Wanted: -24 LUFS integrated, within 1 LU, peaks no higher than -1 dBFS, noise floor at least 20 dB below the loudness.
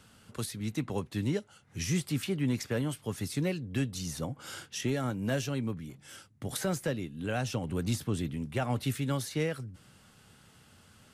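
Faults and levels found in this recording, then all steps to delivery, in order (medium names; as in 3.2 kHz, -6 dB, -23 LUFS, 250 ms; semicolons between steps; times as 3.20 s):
loudness -33.5 LUFS; peak level -20.0 dBFS; loudness target -24.0 LUFS
-> trim +9.5 dB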